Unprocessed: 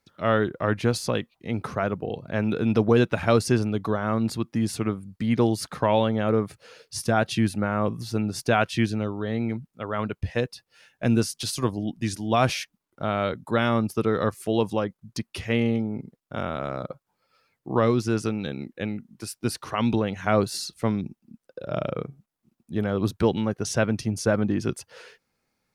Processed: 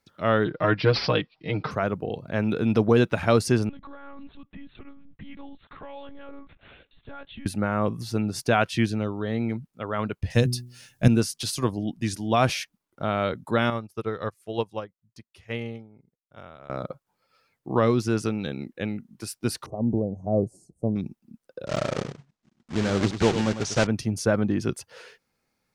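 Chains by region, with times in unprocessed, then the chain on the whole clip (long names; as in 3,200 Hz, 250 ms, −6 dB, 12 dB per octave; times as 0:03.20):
0:00.45–0:01.71: parametric band 3,800 Hz +3 dB 2.2 octaves + comb filter 6.5 ms, depth 87% + bad sample-rate conversion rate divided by 4×, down none, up filtered
0:03.69–0:07.46: parametric band 350 Hz −6 dB 1.5 octaves + downward compressor 3 to 1, threshold −42 dBFS + one-pitch LPC vocoder at 8 kHz 280 Hz
0:10.30–0:11.08: bass and treble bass +14 dB, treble +14 dB + hum removal 61.19 Hz, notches 6
0:13.70–0:16.70: parametric band 240 Hz −5.5 dB 1.1 octaves + expander for the loud parts 2.5 to 1, over −33 dBFS
0:19.66–0:20.96: elliptic band-stop filter 660–7,900 Hz, stop band 50 dB + head-to-tape spacing loss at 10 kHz 22 dB
0:21.66–0:23.87: one scale factor per block 3 bits + low-pass filter 7,300 Hz 24 dB per octave + single-tap delay 100 ms −10 dB
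whole clip: no processing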